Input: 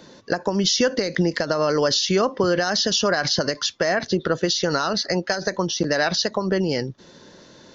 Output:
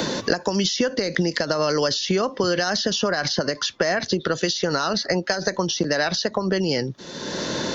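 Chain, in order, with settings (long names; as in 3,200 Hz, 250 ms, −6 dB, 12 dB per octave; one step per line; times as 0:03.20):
multiband upward and downward compressor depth 100%
level −1.5 dB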